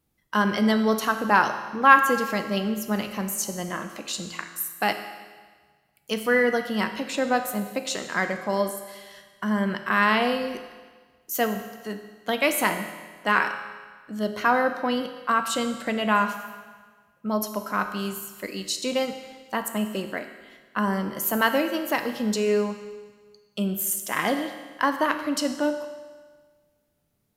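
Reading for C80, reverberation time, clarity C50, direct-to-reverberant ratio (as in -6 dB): 10.0 dB, 1.5 s, 8.5 dB, 6.5 dB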